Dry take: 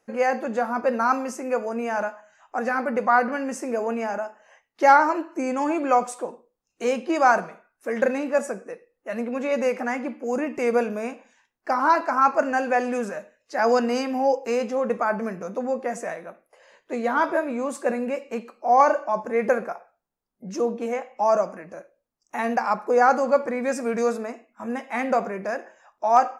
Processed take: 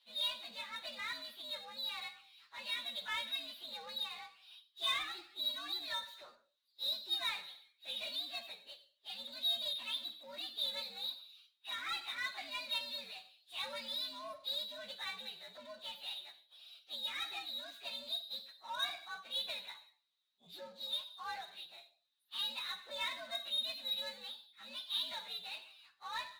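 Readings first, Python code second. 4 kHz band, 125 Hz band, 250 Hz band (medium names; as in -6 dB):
+10.0 dB, no reading, -35.5 dB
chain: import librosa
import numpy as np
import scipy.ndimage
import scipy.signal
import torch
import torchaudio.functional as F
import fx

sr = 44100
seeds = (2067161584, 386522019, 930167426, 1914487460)

y = fx.partial_stretch(x, sr, pct=123)
y = fx.bandpass_q(y, sr, hz=3800.0, q=20.0)
y = fx.power_curve(y, sr, exponent=0.7)
y = y * 10.0 ** (8.5 / 20.0)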